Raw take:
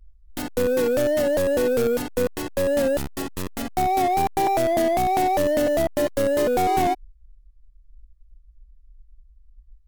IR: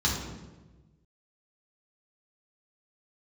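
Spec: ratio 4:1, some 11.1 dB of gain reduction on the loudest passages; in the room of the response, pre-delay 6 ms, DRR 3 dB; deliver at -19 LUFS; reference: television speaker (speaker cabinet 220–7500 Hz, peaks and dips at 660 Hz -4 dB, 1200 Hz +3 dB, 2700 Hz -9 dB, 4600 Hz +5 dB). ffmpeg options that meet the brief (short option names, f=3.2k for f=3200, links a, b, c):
-filter_complex "[0:a]acompressor=threshold=-31dB:ratio=4,asplit=2[a][b];[1:a]atrim=start_sample=2205,adelay=6[c];[b][c]afir=irnorm=-1:irlink=0,volume=-13.5dB[d];[a][d]amix=inputs=2:normalize=0,highpass=f=220:w=0.5412,highpass=f=220:w=1.3066,equalizer=f=660:t=q:w=4:g=-4,equalizer=f=1.2k:t=q:w=4:g=3,equalizer=f=2.7k:t=q:w=4:g=-9,equalizer=f=4.6k:t=q:w=4:g=5,lowpass=f=7.5k:w=0.5412,lowpass=f=7.5k:w=1.3066,volume=13dB"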